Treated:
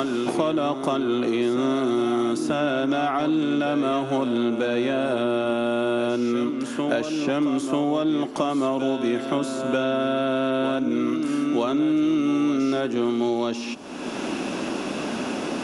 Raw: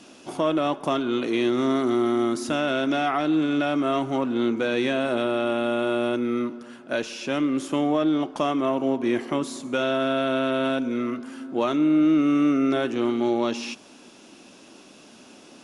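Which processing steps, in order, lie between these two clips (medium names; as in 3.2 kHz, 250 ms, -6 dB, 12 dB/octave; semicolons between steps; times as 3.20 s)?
on a send: reverse echo 941 ms -10.5 dB; on the sum: dynamic bell 2.1 kHz, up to -4 dB, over -44 dBFS, Q 1.3; three bands compressed up and down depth 100%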